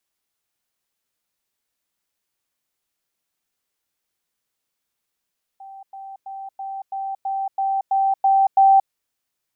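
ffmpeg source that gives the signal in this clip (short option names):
-f lavfi -i "aevalsrc='pow(10,(-36.5+3*floor(t/0.33))/20)*sin(2*PI*779*t)*clip(min(mod(t,0.33),0.23-mod(t,0.33))/0.005,0,1)':d=3.3:s=44100"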